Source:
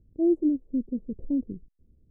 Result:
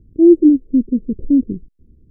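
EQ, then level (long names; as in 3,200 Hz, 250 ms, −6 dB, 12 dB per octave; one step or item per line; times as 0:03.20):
low shelf with overshoot 530 Hz +10.5 dB, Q 1.5
+1.0 dB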